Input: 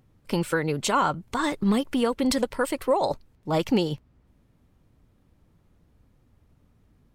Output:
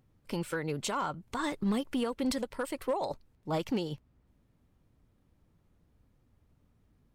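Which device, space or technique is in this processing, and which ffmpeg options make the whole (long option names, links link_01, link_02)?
limiter into clipper: -af "alimiter=limit=-15.5dB:level=0:latency=1:release=248,asoftclip=type=hard:threshold=-17.5dB,volume=-6.5dB"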